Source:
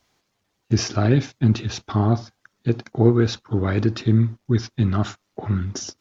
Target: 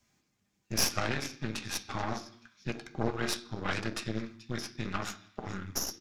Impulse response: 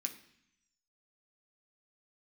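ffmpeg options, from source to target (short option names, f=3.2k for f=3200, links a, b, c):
-filter_complex "[0:a]lowshelf=f=320:g=8,acrossover=split=590|1900[a][b][c];[a]acompressor=threshold=-35dB:ratio=5[d];[c]asplit=4[e][f][g][h];[f]adelay=432,afreqshift=-96,volume=-14dB[i];[g]adelay=864,afreqshift=-192,volume=-23.4dB[j];[h]adelay=1296,afreqshift=-288,volume=-32.7dB[k];[e][i][j][k]amix=inputs=4:normalize=0[l];[d][b][l]amix=inputs=3:normalize=0[m];[1:a]atrim=start_sample=2205,afade=t=out:st=0.41:d=0.01,atrim=end_sample=18522[n];[m][n]afir=irnorm=-1:irlink=0,aeval=exprs='0.178*(cos(1*acos(clip(val(0)/0.178,-1,1)))-cos(1*PI/2))+0.0631*(cos(4*acos(clip(val(0)/0.178,-1,1)))-cos(4*PI/2))+0.00891*(cos(7*acos(clip(val(0)/0.178,-1,1)))-cos(7*PI/2))':c=same,volume=-1.5dB"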